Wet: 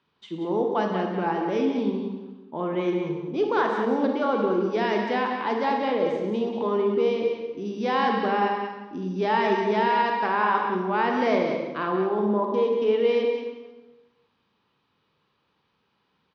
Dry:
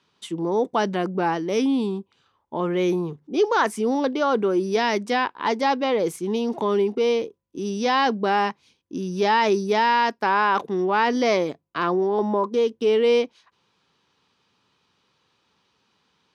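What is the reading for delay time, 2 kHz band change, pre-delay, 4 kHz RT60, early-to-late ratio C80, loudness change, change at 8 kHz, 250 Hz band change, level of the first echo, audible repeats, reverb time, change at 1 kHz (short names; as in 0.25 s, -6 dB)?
0.184 s, -3.0 dB, 33 ms, 1.0 s, 3.5 dB, -2.5 dB, under -15 dB, -1.5 dB, -7.0 dB, 1, 1.2 s, -2.0 dB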